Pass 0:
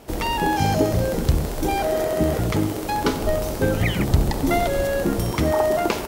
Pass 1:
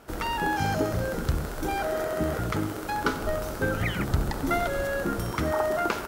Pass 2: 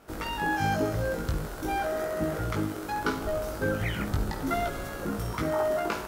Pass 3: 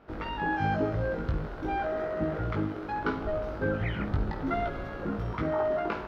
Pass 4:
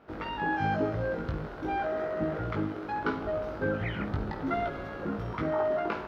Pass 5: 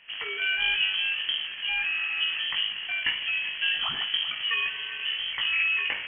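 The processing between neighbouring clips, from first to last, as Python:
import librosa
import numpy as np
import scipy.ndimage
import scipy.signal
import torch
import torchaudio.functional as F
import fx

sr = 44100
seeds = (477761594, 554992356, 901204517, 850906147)

y1 = fx.peak_eq(x, sr, hz=1400.0, db=11.5, octaves=0.58)
y1 = y1 * librosa.db_to_amplitude(-7.5)
y2 = fx.doubler(y1, sr, ms=19.0, db=-3.5)
y2 = fx.room_flutter(y2, sr, wall_m=9.1, rt60_s=0.24)
y2 = y2 * librosa.db_to_amplitude(-4.5)
y3 = fx.air_absorb(y2, sr, metres=310.0)
y4 = fx.highpass(y3, sr, hz=99.0, slope=6)
y5 = y4 + 10.0 ** (-15.0 / 20.0) * np.pad(y4, (int(388 * sr / 1000.0), 0))[:len(y4)]
y5 = fx.freq_invert(y5, sr, carrier_hz=3200)
y5 = y5 * librosa.db_to_amplitude(2.5)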